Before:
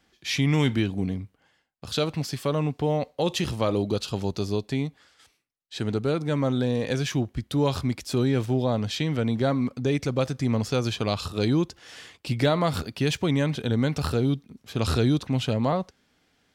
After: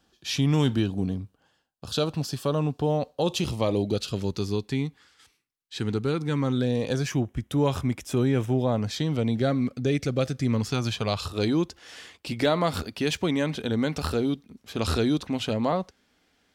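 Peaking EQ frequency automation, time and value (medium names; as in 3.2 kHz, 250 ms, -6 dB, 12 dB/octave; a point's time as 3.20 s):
peaking EQ -14.5 dB 0.3 oct
3.28 s 2.1 kHz
4.43 s 620 Hz
6.52 s 620 Hz
7.16 s 4.4 kHz
8.74 s 4.4 kHz
9.43 s 950 Hz
10.40 s 950 Hz
11.50 s 130 Hz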